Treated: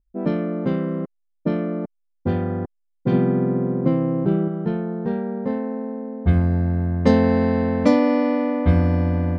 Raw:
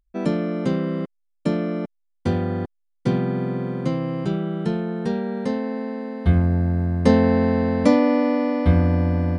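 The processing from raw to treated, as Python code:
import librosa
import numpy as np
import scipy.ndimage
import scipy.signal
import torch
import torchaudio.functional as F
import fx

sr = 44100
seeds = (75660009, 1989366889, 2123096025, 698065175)

y = fx.env_lowpass(x, sr, base_hz=380.0, full_db=-12.0)
y = fx.peak_eq(y, sr, hz=300.0, db=6.0, octaves=1.9, at=(3.12, 4.48))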